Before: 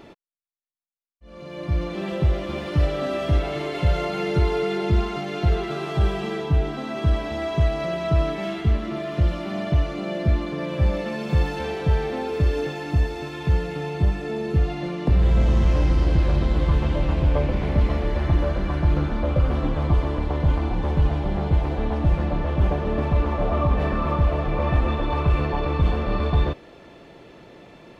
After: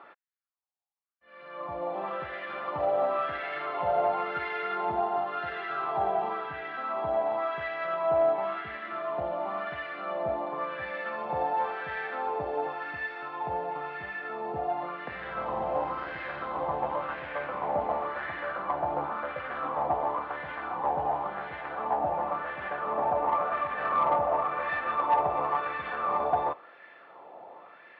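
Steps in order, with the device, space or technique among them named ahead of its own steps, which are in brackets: wah-wah guitar rig (wah-wah 0.94 Hz 780–1800 Hz, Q 3.7; valve stage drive 25 dB, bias 0.35; cabinet simulation 87–4400 Hz, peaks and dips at 530 Hz +5 dB, 760 Hz +6 dB, 1.2 kHz +3 dB); 5.00–5.82 s: band-stop 2.2 kHz, Q 9.8; trim +7 dB

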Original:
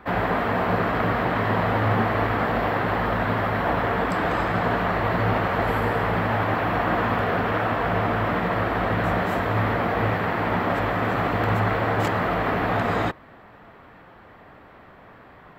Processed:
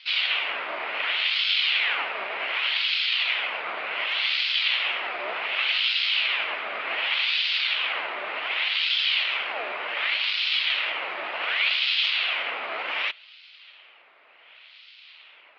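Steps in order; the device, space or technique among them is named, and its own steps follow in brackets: voice changer toy (ring modulator with a swept carrier 1.9 kHz, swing 75%, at 0.67 Hz; cabinet simulation 590–4000 Hz, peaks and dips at 630 Hz +4 dB, 1.7 kHz -6 dB, 3.7 kHz -4 dB); frequency weighting D; trim -6 dB

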